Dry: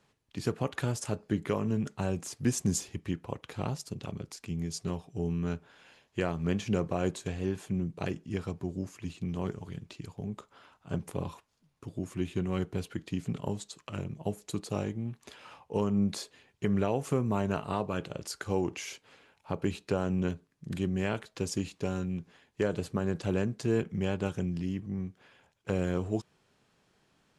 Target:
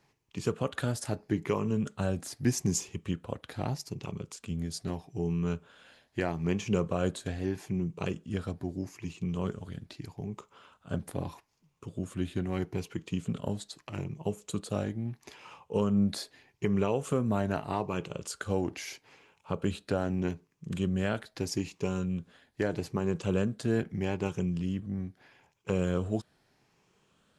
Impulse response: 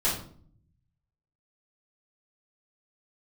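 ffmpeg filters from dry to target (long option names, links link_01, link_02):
-af "afftfilt=real='re*pow(10,6/40*sin(2*PI*(0.75*log(max(b,1)*sr/1024/100)/log(2)-(0.79)*(pts-256)/sr)))':imag='im*pow(10,6/40*sin(2*PI*(0.75*log(max(b,1)*sr/1024/100)/log(2)-(0.79)*(pts-256)/sr)))':win_size=1024:overlap=0.75"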